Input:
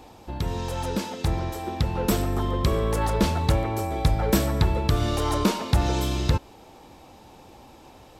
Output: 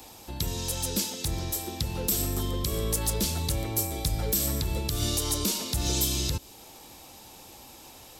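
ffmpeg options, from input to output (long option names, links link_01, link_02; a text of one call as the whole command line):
ffmpeg -i in.wav -filter_complex "[0:a]acrossover=split=120[link_01][link_02];[link_02]crystalizer=i=5.5:c=0[link_03];[link_01][link_03]amix=inputs=2:normalize=0,alimiter=limit=-9.5dB:level=0:latency=1:release=141,acrossover=split=500|3000[link_04][link_05][link_06];[link_05]acompressor=threshold=-47dB:ratio=2[link_07];[link_04][link_07][link_06]amix=inputs=3:normalize=0,volume=-4dB" out.wav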